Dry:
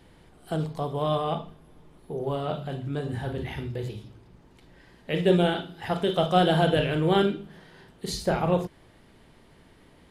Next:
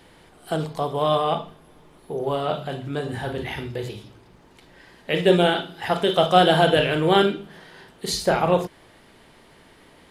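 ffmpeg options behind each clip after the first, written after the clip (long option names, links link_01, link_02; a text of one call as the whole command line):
ffmpeg -i in.wav -af "lowshelf=frequency=270:gain=-10,volume=7.5dB" out.wav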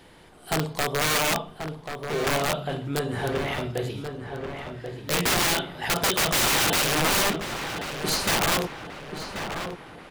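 ffmpeg -i in.wav -filter_complex "[0:a]aeval=exprs='(mod(7.5*val(0)+1,2)-1)/7.5':channel_layout=same,asplit=2[link_01][link_02];[link_02]adelay=1085,lowpass=frequency=2700:poles=1,volume=-7dB,asplit=2[link_03][link_04];[link_04]adelay=1085,lowpass=frequency=2700:poles=1,volume=0.52,asplit=2[link_05][link_06];[link_06]adelay=1085,lowpass=frequency=2700:poles=1,volume=0.52,asplit=2[link_07][link_08];[link_08]adelay=1085,lowpass=frequency=2700:poles=1,volume=0.52,asplit=2[link_09][link_10];[link_10]adelay=1085,lowpass=frequency=2700:poles=1,volume=0.52,asplit=2[link_11][link_12];[link_12]adelay=1085,lowpass=frequency=2700:poles=1,volume=0.52[link_13];[link_01][link_03][link_05][link_07][link_09][link_11][link_13]amix=inputs=7:normalize=0" out.wav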